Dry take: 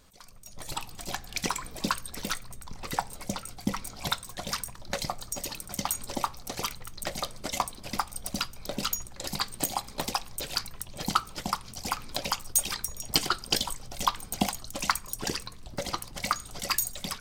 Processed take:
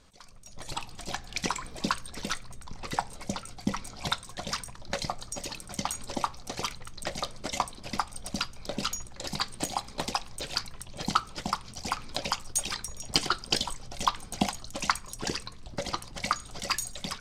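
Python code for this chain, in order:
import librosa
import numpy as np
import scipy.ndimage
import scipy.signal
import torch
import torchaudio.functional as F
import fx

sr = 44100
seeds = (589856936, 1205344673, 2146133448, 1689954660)

y = scipy.signal.sosfilt(scipy.signal.butter(2, 7800.0, 'lowpass', fs=sr, output='sos'), x)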